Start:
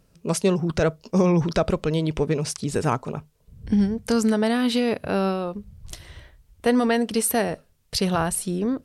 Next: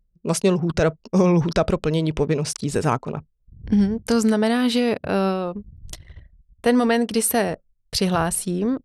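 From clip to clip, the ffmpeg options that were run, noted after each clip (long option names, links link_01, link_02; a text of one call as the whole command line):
ffmpeg -i in.wav -af "anlmdn=0.158,volume=2dB" out.wav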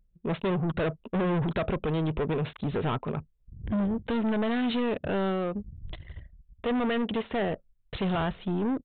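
ffmpeg -i in.wav -af "asoftclip=type=tanh:threshold=-24.5dB,aresample=8000,aresample=44100" out.wav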